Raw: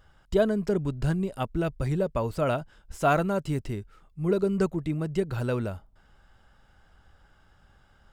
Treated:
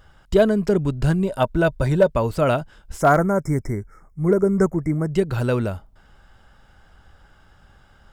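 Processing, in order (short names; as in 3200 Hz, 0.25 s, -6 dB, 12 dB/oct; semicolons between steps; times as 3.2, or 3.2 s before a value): 1.24–2.1 small resonant body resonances 610/940/1500/3600 Hz, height 10 dB, ringing for 35 ms; 3.01–5.12 spectral delete 2300–5100 Hz; hard clip -14 dBFS, distortion -29 dB; gain +7 dB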